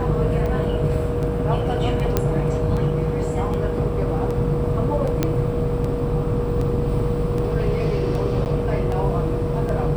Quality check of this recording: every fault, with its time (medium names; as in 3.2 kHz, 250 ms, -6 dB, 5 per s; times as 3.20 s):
buzz 50 Hz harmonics 23 -27 dBFS
tick 78 rpm -17 dBFS
whine 480 Hz -25 dBFS
2.17 s: pop -5 dBFS
5.23 s: pop -6 dBFS
8.45–8.46 s: dropout 9.6 ms